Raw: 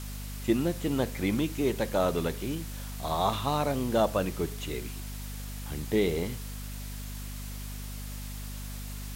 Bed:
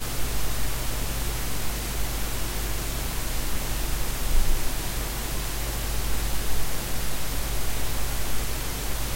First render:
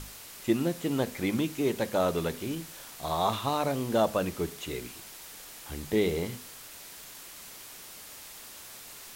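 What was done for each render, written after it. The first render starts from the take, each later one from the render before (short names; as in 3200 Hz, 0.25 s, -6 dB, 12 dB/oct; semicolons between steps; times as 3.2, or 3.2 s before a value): notches 50/100/150/200/250 Hz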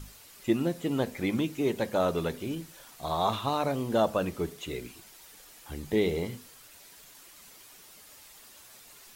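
denoiser 8 dB, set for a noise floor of -47 dBFS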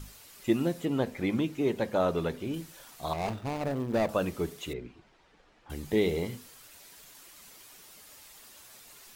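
0.85–2.54 high shelf 4700 Hz -8.5 dB; 3.13–4.09 median filter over 41 samples; 4.73–5.7 tape spacing loss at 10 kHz 35 dB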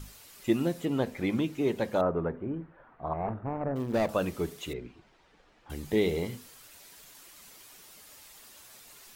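2.01–3.76 LPF 1600 Hz 24 dB/oct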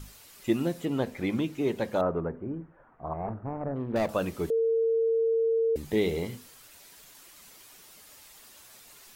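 2.2–3.96 air absorption 470 m; 4.5–5.76 bleep 454 Hz -22 dBFS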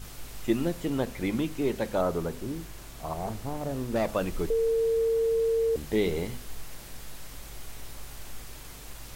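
add bed -15.5 dB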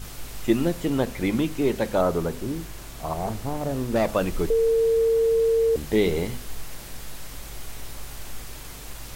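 gain +5 dB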